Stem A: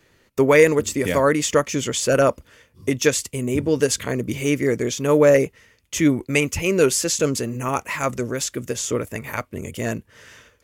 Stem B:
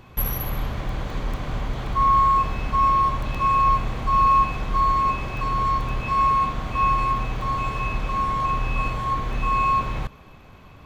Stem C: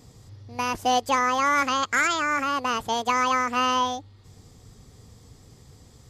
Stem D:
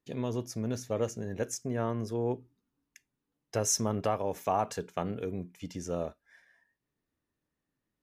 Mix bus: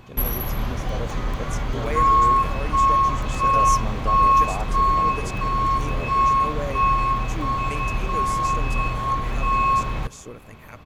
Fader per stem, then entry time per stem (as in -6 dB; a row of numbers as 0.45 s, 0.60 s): -16.5 dB, +1.0 dB, -17.5 dB, -2.5 dB; 1.35 s, 0.00 s, 0.00 s, 0.00 s